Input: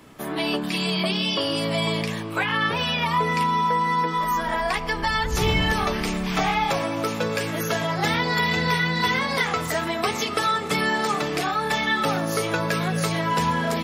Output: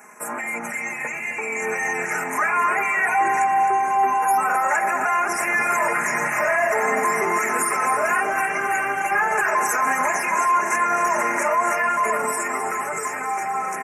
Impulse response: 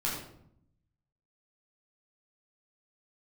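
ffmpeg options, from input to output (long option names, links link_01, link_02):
-af "highpass=380,tiltshelf=frequency=700:gain=-8.5,aecho=1:1:3.8:0.83,acontrast=40,alimiter=limit=-13dB:level=0:latency=1:release=61,dynaudnorm=framelen=210:gausssize=17:maxgain=6dB,asetrate=35002,aresample=44100,atempo=1.25992,asuperstop=centerf=3800:order=8:qfactor=1,aecho=1:1:262|524|786|1048|1310|1572:0.335|0.184|0.101|0.0557|0.0307|0.0169,volume=-5dB"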